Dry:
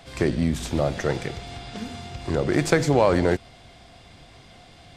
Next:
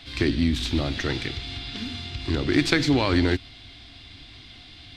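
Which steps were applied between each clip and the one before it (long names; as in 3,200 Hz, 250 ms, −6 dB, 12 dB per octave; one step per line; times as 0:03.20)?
drawn EQ curve 100 Hz 0 dB, 180 Hz −11 dB, 280 Hz +2 dB, 520 Hz −15 dB, 4,000 Hz +7 dB, 7,000 Hz −9 dB
level +3.5 dB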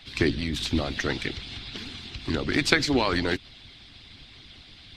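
harmonic and percussive parts rebalanced harmonic −17 dB
level +3 dB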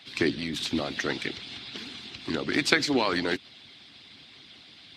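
high-pass filter 180 Hz 12 dB per octave
level −1 dB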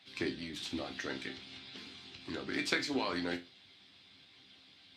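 resonators tuned to a chord C2 sus4, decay 0.26 s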